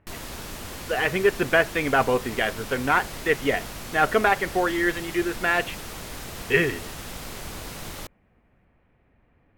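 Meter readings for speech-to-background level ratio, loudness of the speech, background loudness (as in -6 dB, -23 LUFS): 13.0 dB, -23.5 LUFS, -36.5 LUFS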